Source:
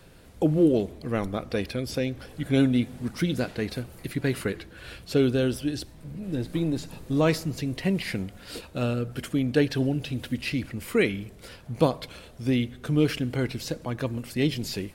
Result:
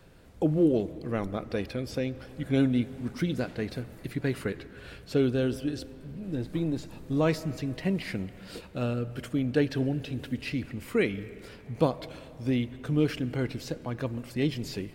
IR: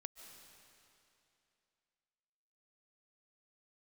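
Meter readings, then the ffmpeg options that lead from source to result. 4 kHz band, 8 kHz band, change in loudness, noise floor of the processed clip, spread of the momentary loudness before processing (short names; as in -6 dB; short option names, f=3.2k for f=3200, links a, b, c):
-6.0 dB, -7.5 dB, -3.0 dB, -49 dBFS, 13 LU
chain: -filter_complex "[0:a]equalizer=f=11k:t=o:w=0.5:g=-5,asplit=2[a][b];[1:a]atrim=start_sample=2205,lowpass=2.7k[c];[b][c]afir=irnorm=-1:irlink=0,volume=-3dB[d];[a][d]amix=inputs=2:normalize=0,volume=-5.5dB"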